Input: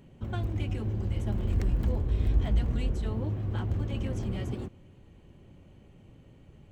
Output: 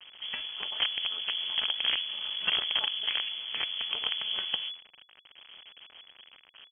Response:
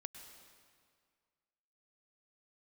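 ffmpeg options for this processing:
-af "highpass=130,aecho=1:1:4.7:0.91,flanger=delay=5.1:depth=6.9:regen=25:speed=0.35:shape=sinusoidal,acrusher=bits=6:dc=4:mix=0:aa=0.000001,lowpass=f=2900:t=q:w=0.5098,lowpass=f=2900:t=q:w=0.6013,lowpass=f=2900:t=q:w=0.9,lowpass=f=2900:t=q:w=2.563,afreqshift=-3400,volume=2.24"

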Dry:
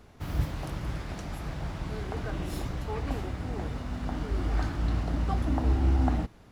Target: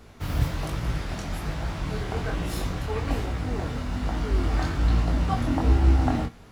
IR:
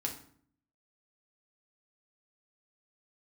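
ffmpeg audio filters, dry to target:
-filter_complex "[0:a]flanger=delay=17.5:depth=7.7:speed=1.2,asplit=2[s0][s1];[s1]tiltshelf=f=640:g=-10[s2];[1:a]atrim=start_sample=2205,asetrate=70560,aresample=44100[s3];[s2][s3]afir=irnorm=-1:irlink=0,volume=0.266[s4];[s0][s4]amix=inputs=2:normalize=0,volume=2.24"

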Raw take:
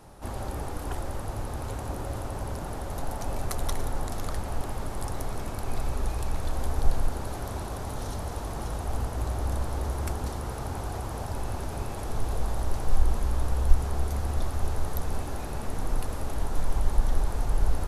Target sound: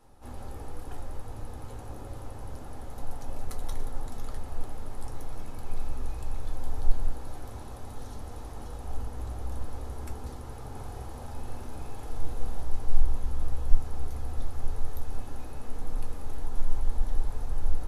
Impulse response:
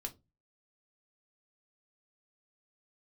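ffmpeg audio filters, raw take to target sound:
-filter_complex "[0:a]asettb=1/sr,asplit=3[s0][s1][s2];[s0]atrim=end=10.704[s3];[s1]atrim=start=10.7:end=12.63,asetpts=PTS-STARTPTS,afade=t=in:d=0.004:c=qsin,afade=t=out:st=1.926:d=0.004:c=qsin,asplit=2[s4][s5];[s5]adelay=46,volume=0.562[s6];[s4][s6]amix=inputs=2:normalize=0,atrim=end_sample=85113[s7];[s2]atrim=start=12.626[s8];[s3][s7]acrossfade=d=0.004:c1=hsin:c2=qsin[s9];[s9][s8]acrossfade=d=0.004:c1=qsin:c2=hsin[s10];[1:a]atrim=start_sample=2205[s11];[s10][s11]afir=irnorm=-1:irlink=0,volume=0.422"

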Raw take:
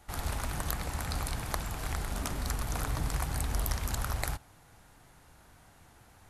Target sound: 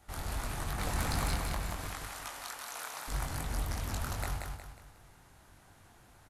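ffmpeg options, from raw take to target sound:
-filter_complex "[0:a]asettb=1/sr,asplit=3[s0][s1][s2];[s0]atrim=end=1.874[s3];[s1]atrim=start=1.87:end=3.08,asetpts=PTS-STARTPTS,afade=t=in:d=0.004:c=qsin,afade=t=out:st=1.206:d=0.004:c=qsin,highpass=800[s4];[s2]atrim=start=3.076[s5];[s3][s4]acrossfade=d=0.004:c1=hsin:c2=qsin[s6];[s6][s5]acrossfade=d=0.004:c1=qsin:c2=hsin,acrossover=split=4000[s7][s8];[s8]alimiter=limit=0.0668:level=0:latency=1:release=118[s9];[s7][s9]amix=inputs=2:normalize=0,asettb=1/sr,asplit=3[s10][s11][s12];[s10]atrim=end=0.784[s13];[s11]atrim=start=0.78:end=1.35,asetpts=PTS-STARTPTS,afade=t=in:d=0.004:c=qsin,afade=t=out:st=0.566:d=0.004:c=qsin,acontrast=52[s14];[s12]atrim=start=1.346[s15];[s13][s14]acrossfade=d=0.004:c1=hsin:c2=qsin[s16];[s16][s15]acrossfade=d=0.004:c1=qsin:c2=hsin,asoftclip=type=tanh:threshold=0.1,flanger=delay=19.5:depth=4:speed=2.6,asplit=2[s17][s18];[s18]aecho=0:1:181|362|543|724|905:0.631|0.252|0.101|0.0404|0.0162[s19];[s17][s19]amix=inputs=2:normalize=0"

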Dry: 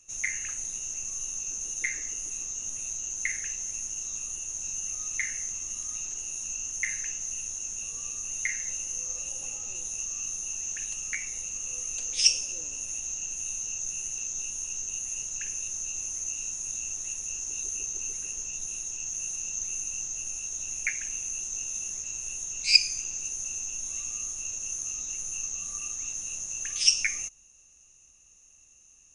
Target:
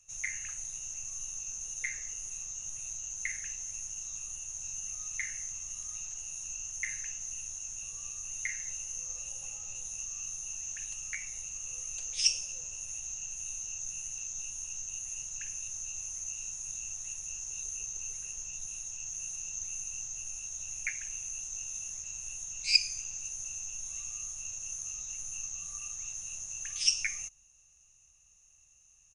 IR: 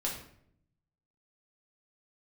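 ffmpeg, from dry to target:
-af "firequalizer=gain_entry='entry(140,0);entry(300,-21);entry(440,-8);entry(710,-3)':delay=0.05:min_phase=1,volume=0.75"

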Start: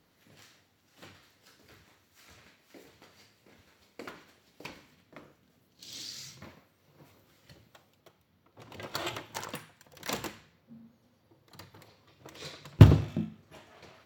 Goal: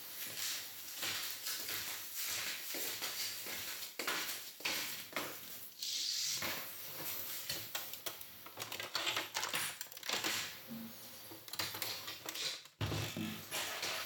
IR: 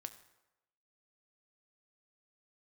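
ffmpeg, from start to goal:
-filter_complex "[0:a]acrossover=split=5400[s0][s1];[s1]acompressor=threshold=0.00178:ratio=4:attack=1:release=60[s2];[s0][s2]amix=inputs=2:normalize=0,crystalizer=i=10:c=0,areverse,acompressor=threshold=0.00708:ratio=8,areverse,bass=f=250:g=-7,treble=f=4000:g=-2[s3];[1:a]atrim=start_sample=2205,atrim=end_sample=3969[s4];[s3][s4]afir=irnorm=-1:irlink=0,volume=4.22"

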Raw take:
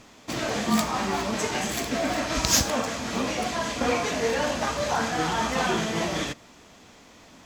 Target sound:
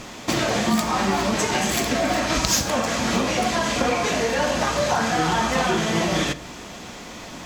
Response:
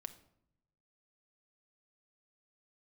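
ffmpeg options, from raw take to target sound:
-filter_complex "[0:a]acompressor=threshold=0.02:ratio=4,asplit=2[s0][s1];[1:a]atrim=start_sample=2205[s2];[s1][s2]afir=irnorm=-1:irlink=0,volume=4.22[s3];[s0][s3]amix=inputs=2:normalize=0,volume=1.33"

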